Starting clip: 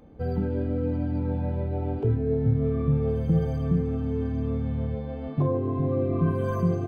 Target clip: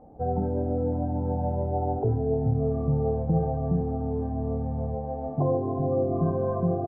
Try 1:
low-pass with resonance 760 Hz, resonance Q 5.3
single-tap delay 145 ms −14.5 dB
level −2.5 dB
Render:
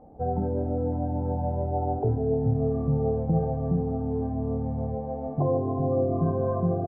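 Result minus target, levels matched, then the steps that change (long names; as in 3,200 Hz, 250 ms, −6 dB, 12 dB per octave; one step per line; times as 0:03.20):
echo 48 ms late
change: single-tap delay 97 ms −14.5 dB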